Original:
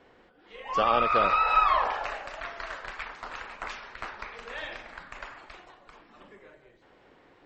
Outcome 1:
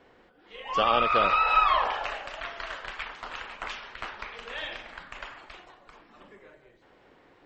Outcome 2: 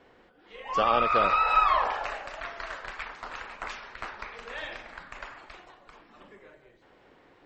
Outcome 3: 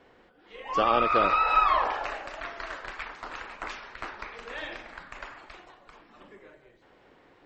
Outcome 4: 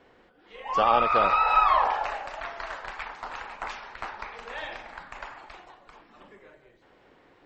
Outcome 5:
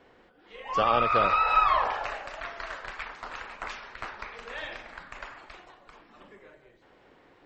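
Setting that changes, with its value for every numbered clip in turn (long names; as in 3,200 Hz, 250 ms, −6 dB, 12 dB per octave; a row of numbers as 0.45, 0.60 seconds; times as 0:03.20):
dynamic equaliser, frequency: 3,100, 8,500, 320, 840, 110 Hertz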